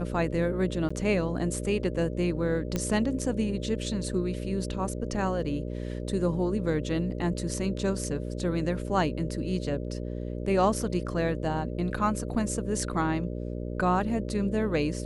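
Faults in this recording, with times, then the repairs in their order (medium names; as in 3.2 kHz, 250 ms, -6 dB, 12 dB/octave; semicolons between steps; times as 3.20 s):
buzz 60 Hz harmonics 10 -34 dBFS
0.89–0.91 s: dropout 15 ms
2.76 s: pop -14 dBFS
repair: de-click; de-hum 60 Hz, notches 10; interpolate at 0.89 s, 15 ms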